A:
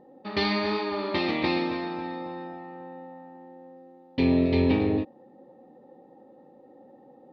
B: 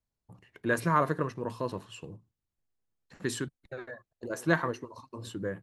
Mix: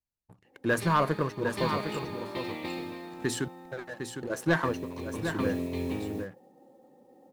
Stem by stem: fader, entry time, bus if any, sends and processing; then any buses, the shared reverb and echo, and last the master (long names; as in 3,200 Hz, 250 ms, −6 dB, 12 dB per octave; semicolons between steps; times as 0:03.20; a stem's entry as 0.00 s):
−6.5 dB, 0.45 s, no send, echo send −4 dB, noise that follows the level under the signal 24 dB; automatic ducking −10 dB, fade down 0.95 s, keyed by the second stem
−5.0 dB, 0.00 s, no send, echo send −7.5 dB, leveller curve on the samples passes 2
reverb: not used
echo: single-tap delay 756 ms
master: no processing